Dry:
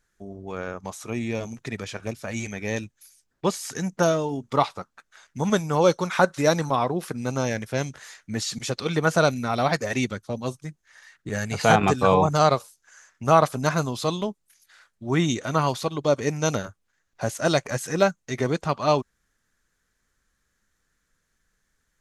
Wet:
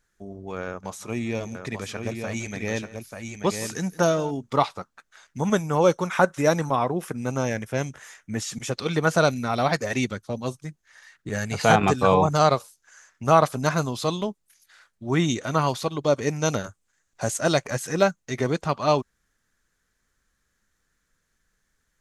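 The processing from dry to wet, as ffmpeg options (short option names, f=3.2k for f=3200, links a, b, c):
-filter_complex "[0:a]asettb=1/sr,asplit=3[a][b][c];[a]atrim=end=0.664[d];[b]atrim=start=0.66:end=4.31,asetpts=PTS-STARTPTS,afade=t=in:d=0.004:c=qsin,afade=t=out:st=3.646:d=0.004:c=qsin,aecho=1:1:167|886:0.106|0.531,atrim=end_sample=160965[e];[c]atrim=start=4.306[f];[d][e]acrossfade=d=0.004:c1=hsin:c2=qsin[g];[g][f]acrossfade=d=0.004:c1=qsin:c2=hsin,asettb=1/sr,asplit=3[h][i][j];[h]atrim=end=5.404[k];[i]atrim=start=5.4:end=8.75,asetpts=PTS-STARTPTS,afade=t=in:d=0.004:c=qsin,afade=t=out:st=3.346:d=0.004:c=qsin,equalizer=f=4.3k:t=o:w=0.44:g=-10[l];[j]atrim=start=8.746[m];[k][l]acrossfade=d=0.004:c1=hsin:c2=qsin[n];[n][m]acrossfade=d=0.004:c1=qsin:c2=hsin,asettb=1/sr,asplit=3[o][p][q];[o]atrim=end=16.644[r];[p]atrim=start=16.64:end=17.39,asetpts=PTS-STARTPTS,afade=t=in:d=0.004:c=qsin,afade=t=out:st=0.746:d=0.004:c=qsin,equalizer=f=7.8k:t=o:w=0.75:g=9.5[s];[q]atrim=start=17.386[t];[r][s]acrossfade=d=0.004:c1=hsin:c2=qsin[u];[u][t]acrossfade=d=0.004:c1=qsin:c2=hsin"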